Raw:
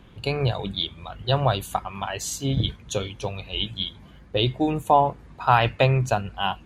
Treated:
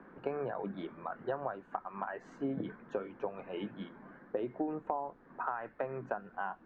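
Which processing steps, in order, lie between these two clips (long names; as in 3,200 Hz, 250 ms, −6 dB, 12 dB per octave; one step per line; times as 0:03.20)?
high-pass filter 220 Hz 24 dB per octave
high shelf with overshoot 2,400 Hz −13.5 dB, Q 3
downward compressor 8 to 1, threshold −32 dBFS, peak gain reduction 22.5 dB
background noise pink −71 dBFS
head-to-tape spacing loss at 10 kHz 39 dB
level +1.5 dB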